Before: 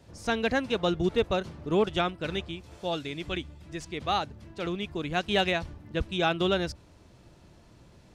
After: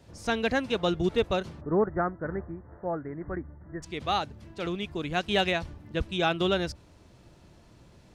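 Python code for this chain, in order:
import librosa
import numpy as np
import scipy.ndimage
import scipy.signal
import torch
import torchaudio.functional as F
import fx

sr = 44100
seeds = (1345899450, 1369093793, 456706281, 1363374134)

y = fx.steep_lowpass(x, sr, hz=1900.0, slope=96, at=(1.6, 3.82), fade=0.02)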